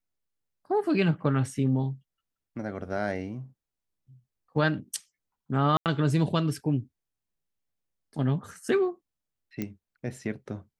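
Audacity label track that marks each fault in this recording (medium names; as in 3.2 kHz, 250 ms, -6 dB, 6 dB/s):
5.770000	5.860000	dropout 88 ms
9.620000	9.620000	pop -18 dBFS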